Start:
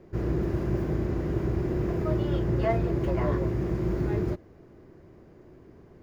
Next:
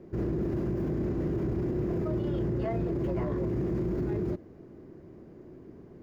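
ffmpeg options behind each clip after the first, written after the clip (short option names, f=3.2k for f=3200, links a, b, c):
-af "equalizer=f=250:t=o:w=2.2:g=8.5,alimiter=limit=-20dB:level=0:latency=1:release=22,volume=-3.5dB"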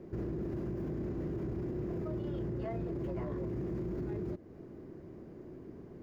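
-af "acompressor=threshold=-40dB:ratio=2"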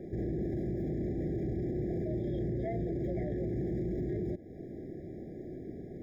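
-af "alimiter=level_in=9dB:limit=-24dB:level=0:latency=1:release=340,volume=-9dB,afftfilt=real='re*eq(mod(floor(b*sr/1024/800),2),0)':imag='im*eq(mod(floor(b*sr/1024/800),2),0)':win_size=1024:overlap=0.75,volume=5.5dB"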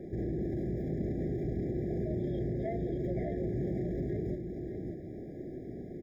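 -af "aecho=1:1:587:0.473"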